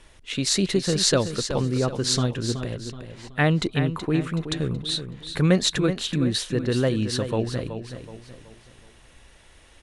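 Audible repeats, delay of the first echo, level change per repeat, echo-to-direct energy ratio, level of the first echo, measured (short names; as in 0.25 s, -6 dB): 4, 0.375 s, -8.0 dB, -8.5 dB, -9.5 dB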